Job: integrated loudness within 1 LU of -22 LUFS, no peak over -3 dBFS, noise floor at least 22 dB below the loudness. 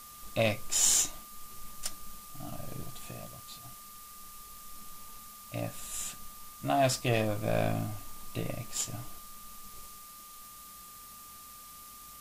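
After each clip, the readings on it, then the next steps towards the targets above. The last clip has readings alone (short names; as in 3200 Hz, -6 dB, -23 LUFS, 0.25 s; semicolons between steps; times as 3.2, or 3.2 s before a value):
steady tone 1200 Hz; tone level -52 dBFS; noise floor -50 dBFS; noise floor target -54 dBFS; loudness -31.5 LUFS; peak -11.0 dBFS; loudness target -22.0 LUFS
-> notch 1200 Hz, Q 30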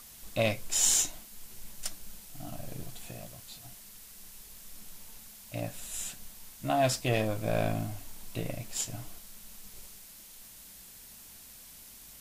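steady tone none; noise floor -51 dBFS; noise floor target -54 dBFS
-> noise print and reduce 6 dB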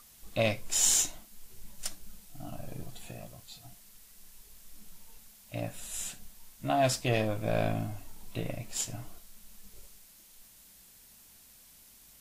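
noise floor -57 dBFS; loudness -31.5 LUFS; peak -11.0 dBFS; loudness target -22.0 LUFS
-> gain +9.5 dB; limiter -3 dBFS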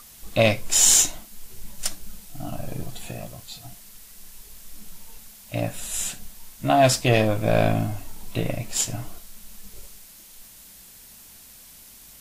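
loudness -22.0 LUFS; peak -3.0 dBFS; noise floor -47 dBFS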